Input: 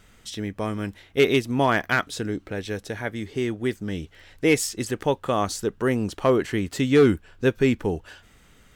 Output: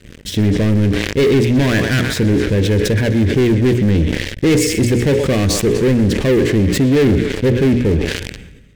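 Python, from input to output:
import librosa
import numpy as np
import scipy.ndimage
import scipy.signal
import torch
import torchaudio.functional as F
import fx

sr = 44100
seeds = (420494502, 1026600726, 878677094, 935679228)

y = scipy.signal.sosfilt(scipy.signal.butter(2, 51.0, 'highpass', fs=sr, output='sos'), x)
y = fx.echo_thinned(y, sr, ms=123, feedback_pct=73, hz=690.0, wet_db=-13.5)
y = fx.rider(y, sr, range_db=5, speed_s=2.0)
y = fx.tilt_eq(y, sr, slope=-3.0)
y = fx.hum_notches(y, sr, base_hz=60, count=9)
y = fx.leveller(y, sr, passes=5)
y = fx.band_shelf(y, sr, hz=960.0, db=-12.0, octaves=1.3)
y = fx.sustainer(y, sr, db_per_s=46.0)
y = y * librosa.db_to_amplitude(-5.5)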